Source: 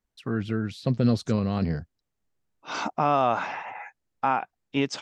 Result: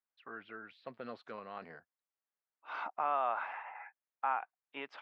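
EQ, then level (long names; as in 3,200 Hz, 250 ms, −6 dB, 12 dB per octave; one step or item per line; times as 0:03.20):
high-pass filter 1,200 Hz 12 dB per octave
high-frequency loss of the air 440 metres
high-shelf EQ 2,000 Hz −11.5 dB
+1.0 dB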